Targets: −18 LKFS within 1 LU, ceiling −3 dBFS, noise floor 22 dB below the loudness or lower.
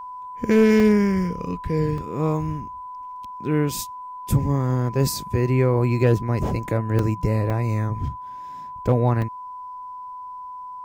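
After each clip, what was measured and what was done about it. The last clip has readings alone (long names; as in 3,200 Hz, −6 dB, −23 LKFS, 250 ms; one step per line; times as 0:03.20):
number of dropouts 5; longest dropout 2.3 ms; interfering tone 1,000 Hz; level of the tone −33 dBFS; integrated loudness −22.0 LKFS; sample peak −7.5 dBFS; target loudness −18.0 LKFS
→ repair the gap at 0:00.80/0:01.98/0:06.99/0:07.50/0:09.22, 2.3 ms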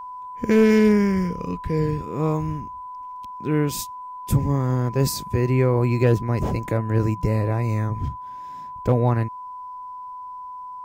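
number of dropouts 0; interfering tone 1,000 Hz; level of the tone −33 dBFS
→ notch filter 1,000 Hz, Q 30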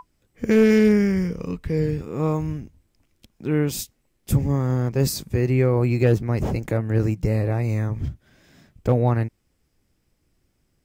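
interfering tone none found; integrated loudness −22.0 LKFS; sample peak −8.0 dBFS; target loudness −18.0 LKFS
→ level +4 dB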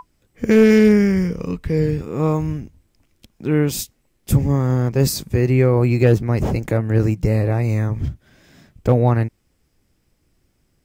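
integrated loudness −18.0 LKFS; sample peak −4.0 dBFS; background noise floor −66 dBFS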